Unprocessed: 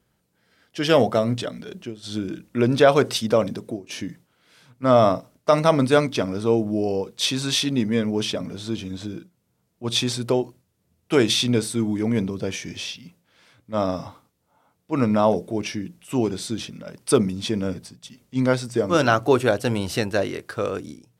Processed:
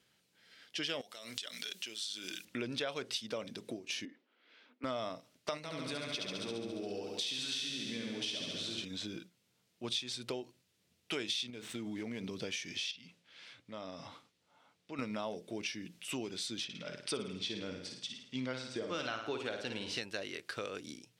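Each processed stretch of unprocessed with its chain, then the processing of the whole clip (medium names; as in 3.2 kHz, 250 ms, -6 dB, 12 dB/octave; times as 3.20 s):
1.01–2.45 s: tilt EQ +4.5 dB/octave + compression 20:1, threshold -33 dBFS
4.05–4.84 s: Chebyshev high-pass 230 Hz, order 5 + tape spacing loss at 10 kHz 38 dB
5.57–8.85 s: compression 5:1, threshold -25 dBFS + flutter echo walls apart 11.9 m, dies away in 1.4 s
11.50–12.24 s: median filter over 9 samples + compression 4:1, threshold -23 dBFS
12.91–14.99 s: low-pass 12 kHz + compression 3:1, threshold -39 dBFS + treble shelf 7.5 kHz -8 dB
16.64–20.01 s: distance through air 69 m + flutter echo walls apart 9.3 m, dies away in 0.52 s
whole clip: frequency weighting D; compression 4:1, threshold -33 dBFS; trim -5.5 dB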